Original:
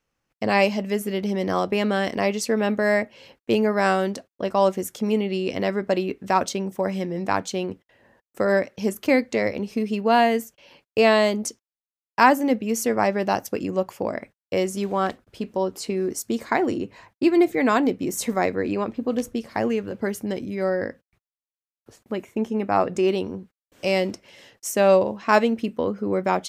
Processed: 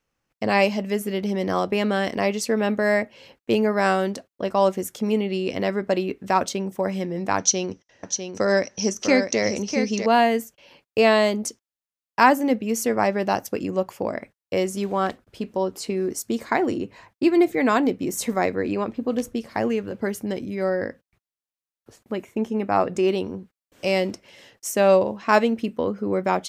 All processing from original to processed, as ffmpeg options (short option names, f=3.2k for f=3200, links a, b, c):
-filter_complex "[0:a]asettb=1/sr,asplit=3[a][b][c];[a]atrim=end=7.384[d];[b]atrim=start=7.38:end=10.06,asetpts=PTS-STARTPTS,afade=t=in:d=0.004:c=qsin,afade=t=out:st=2.676:d=0.004:c=qsin,lowpass=f=5.9k:t=q:w=14,aecho=1:1:650:0.447,atrim=end_sample=118188[e];[c]atrim=start=10.056[f];[d][e]acrossfade=d=0.004:c1=hsin:c2=qsin[g];[g][f]acrossfade=d=0.004:c1=qsin:c2=hsin"